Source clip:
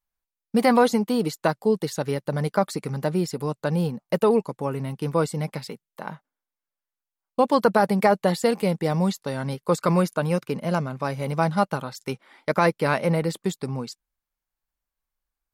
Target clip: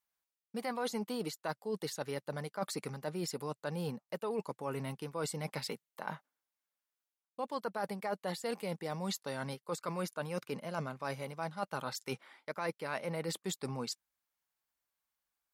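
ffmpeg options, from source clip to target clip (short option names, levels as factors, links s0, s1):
-af "highpass=78,lowshelf=f=390:g=-9,areverse,acompressor=threshold=0.0158:ratio=6,areverse,volume=1.12"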